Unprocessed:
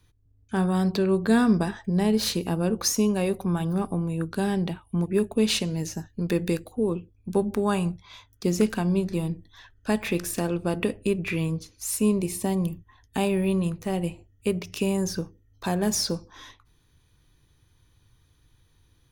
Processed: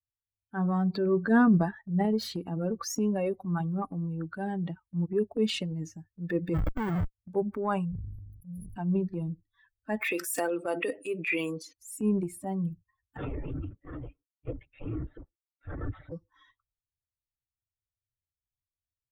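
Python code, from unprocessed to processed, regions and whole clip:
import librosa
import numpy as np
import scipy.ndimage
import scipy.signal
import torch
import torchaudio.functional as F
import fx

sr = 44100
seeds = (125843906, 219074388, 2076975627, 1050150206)

y = fx.chain(x, sr, fx.low_shelf(hz=270.0, db=11.5),
    fx.schmitt(flips_db=-34.5), at=(6.54, 7.14))
y = fx.chain(y, sr, fx.brickwall_bandstop(low_hz=180.0, high_hz=10000.0),
    fx.high_shelf(hz=9400.0, db=-9.5),
    fx.sustainer(db_per_s=22.0), at=(7.85, 8.76))
y = fx.chain(y, sr, fx.highpass(hz=330.0, slope=12),
    fx.high_shelf(hz=3400.0, db=9.5),
    fx.env_flatten(amount_pct=50), at=(10.01, 11.73))
y = fx.chain(y, sr, fx.lower_of_two(delay_ms=0.47),
    fx.highpass(hz=230.0, slope=12),
    fx.lpc_vocoder(seeds[0], excitation='whisper', order=10), at=(13.17, 16.12))
y = fx.bin_expand(y, sr, power=2.0)
y = fx.transient(y, sr, attack_db=-5, sustain_db=6)
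y = fx.high_shelf_res(y, sr, hz=2900.0, db=-7.5, q=1.5)
y = y * 10.0 ** (1.5 / 20.0)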